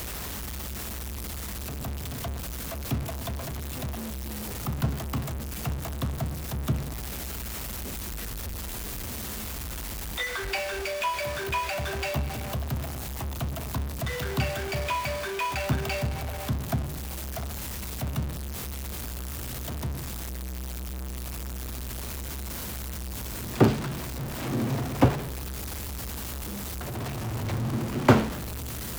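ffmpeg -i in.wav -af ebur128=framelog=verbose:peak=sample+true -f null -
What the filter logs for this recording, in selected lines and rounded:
Integrated loudness:
  I:         -31.2 LUFS
  Threshold: -41.2 LUFS
Loudness range:
  LRA:         6.4 LU
  Threshold: -51.4 LUFS
  LRA low:   -34.6 LUFS
  LRA high:  -28.2 LUFS
Sample peak:
  Peak:       -4.1 dBFS
True peak:
  Peak:       -4.1 dBFS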